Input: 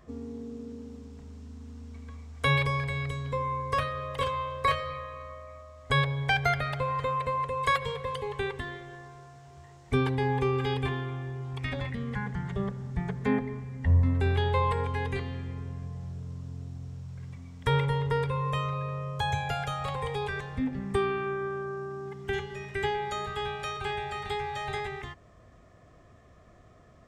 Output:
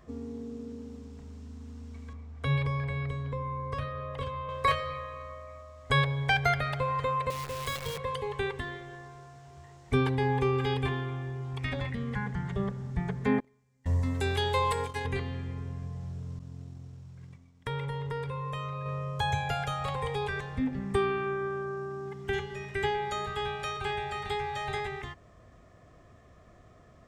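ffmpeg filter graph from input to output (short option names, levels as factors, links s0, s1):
-filter_complex "[0:a]asettb=1/sr,asplit=3[s0][s1][s2];[s0]atrim=end=2.134[s3];[s1]atrim=start=2.13:end=4.49,asetpts=PTS-STARTPTS,afade=t=in:d=0.004:c=qsin,afade=t=out:st=2.356:d=0.004:c=qsin,lowpass=f=1600:p=1,acrossover=split=310|3000[s4][s5][s6];[s5]acompressor=threshold=0.0178:ratio=6:attack=3.2:release=140:knee=2.83:detection=peak[s7];[s4][s7][s6]amix=inputs=3:normalize=0[s8];[s2]atrim=start=4.486[s9];[s3][s8]acrossfade=d=0.004:c1=hsin:c2=qsin[s10];[s10][s9]acrossfade=d=0.004:c1=qsin:c2=hsin,asettb=1/sr,asplit=3[s11][s12][s13];[s11]atrim=end=7.304[s14];[s12]atrim=start=7.3:end=7.98,asetpts=PTS-STARTPTS,afade=t=in:d=0.004:c=qsin,afade=t=out:st=0.676:d=0.004:c=qsin,bandreject=f=60:t=h:w=6,bandreject=f=120:t=h:w=6,bandreject=f=180:t=h:w=6,bandreject=f=240:t=h:w=6,bandreject=f=300:t=h:w=6,acrossover=split=410|3000[s15][s16][s17];[s16]acompressor=threshold=0.0112:ratio=4:attack=3.2:release=140:knee=2.83:detection=peak[s18];[s15][s18][s17]amix=inputs=3:normalize=0,acrusher=bits=7:dc=4:mix=0:aa=0.000001[s19];[s13]atrim=start=7.976[s20];[s14][s19]acrossfade=d=0.004:c1=hsin:c2=qsin[s21];[s21][s20]acrossfade=d=0.004:c1=qsin:c2=hsin,asettb=1/sr,asplit=3[s22][s23][s24];[s22]atrim=end=13.404[s25];[s23]atrim=start=13.4:end=15.05,asetpts=PTS-STARTPTS,afade=t=in:d=0.004:c=qsin,afade=t=out:st=1.646:d=0.004:c=qsin,agate=range=0.0447:threshold=0.0282:ratio=16:release=100:detection=peak,bass=f=250:g=-6,treble=f=4000:g=15[s26];[s24]atrim=start=15.046[s27];[s25][s26]acrossfade=d=0.004:c1=hsin:c2=qsin[s28];[s28][s27]acrossfade=d=0.004:c1=qsin:c2=hsin,asettb=1/sr,asplit=3[s29][s30][s31];[s29]atrim=end=16.394[s32];[s30]atrim=start=16.39:end=18.86,asetpts=PTS-STARTPTS,afade=t=in:d=0.004:c=qsin,afade=t=out:st=2.466:d=0.004:c=qsin,agate=range=0.0224:threshold=0.0158:ratio=3:release=100:detection=peak,equalizer=f=62:w=2.6:g=-8.5,acompressor=threshold=0.02:ratio=2.5:attack=3.2:release=140:knee=1:detection=peak[s33];[s31]atrim=start=18.856[s34];[s32][s33]acrossfade=d=0.004:c1=hsin:c2=qsin[s35];[s35][s34]acrossfade=d=0.004:c1=qsin:c2=hsin"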